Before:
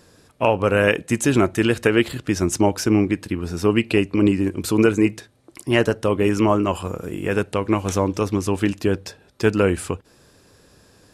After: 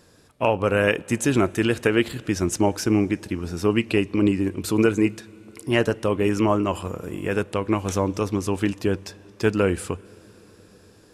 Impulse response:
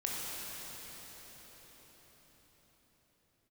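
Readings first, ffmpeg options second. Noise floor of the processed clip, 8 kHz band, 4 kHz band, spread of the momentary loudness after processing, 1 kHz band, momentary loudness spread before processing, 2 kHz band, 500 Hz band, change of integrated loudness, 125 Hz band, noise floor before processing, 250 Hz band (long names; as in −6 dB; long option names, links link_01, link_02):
−53 dBFS, −2.5 dB, −2.5 dB, 9 LU, −2.5 dB, 8 LU, −2.5 dB, −2.5 dB, −2.5 dB, −2.5 dB, −54 dBFS, −2.5 dB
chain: -filter_complex "[0:a]asplit=2[link_01][link_02];[link_02]equalizer=frequency=3500:width_type=o:width=0.21:gain=6.5[link_03];[1:a]atrim=start_sample=2205[link_04];[link_03][link_04]afir=irnorm=-1:irlink=0,volume=-27dB[link_05];[link_01][link_05]amix=inputs=2:normalize=0,volume=-3dB"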